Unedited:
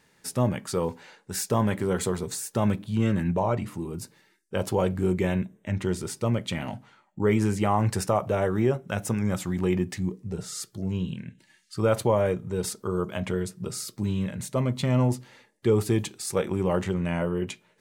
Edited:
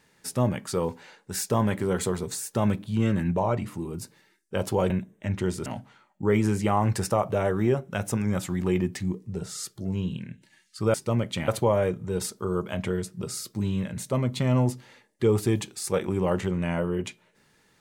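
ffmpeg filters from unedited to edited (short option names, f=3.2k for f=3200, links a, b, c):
-filter_complex "[0:a]asplit=5[a][b][c][d][e];[a]atrim=end=4.902[f];[b]atrim=start=5.328:end=6.092[g];[c]atrim=start=6.628:end=11.912[h];[d]atrim=start=6.088:end=6.632[i];[e]atrim=start=11.908[j];[f][g]acrossfade=d=0.004:c1=hsin:c2=hsin[k];[k][h]acrossfade=d=0.004:c1=hsin:c2=hsin[l];[l][i]acrossfade=d=0.004:c1=hsin:c2=hsin[m];[m][j]acrossfade=d=0.004:c1=hsin:c2=hsin"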